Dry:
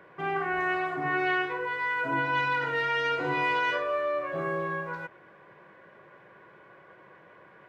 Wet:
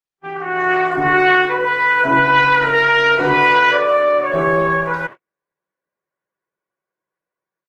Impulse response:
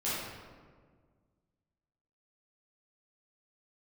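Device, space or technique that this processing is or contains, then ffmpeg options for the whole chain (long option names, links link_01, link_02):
video call: -af "highpass=120,dynaudnorm=framelen=380:gausssize=3:maxgain=16dB,agate=range=-49dB:threshold=-29dB:ratio=16:detection=peak" -ar 48000 -c:a libopus -b:a 16k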